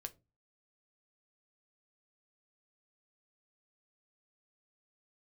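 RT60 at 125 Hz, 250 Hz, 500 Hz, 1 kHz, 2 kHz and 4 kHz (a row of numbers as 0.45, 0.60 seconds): 0.50, 0.40, 0.30, 0.25, 0.20, 0.15 seconds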